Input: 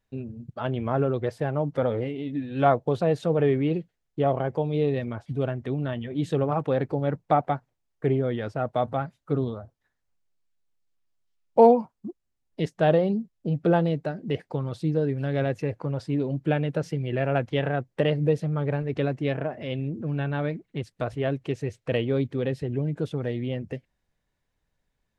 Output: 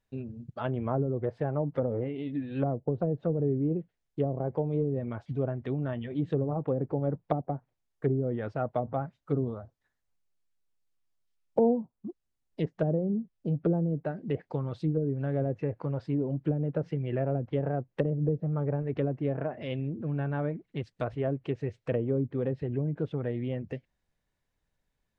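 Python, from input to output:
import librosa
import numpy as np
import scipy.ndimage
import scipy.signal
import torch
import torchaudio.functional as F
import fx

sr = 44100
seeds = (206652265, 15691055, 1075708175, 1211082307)

y = fx.env_lowpass_down(x, sr, base_hz=350.0, full_db=-19.0)
y = y * librosa.db_to_amplitude(-3.0)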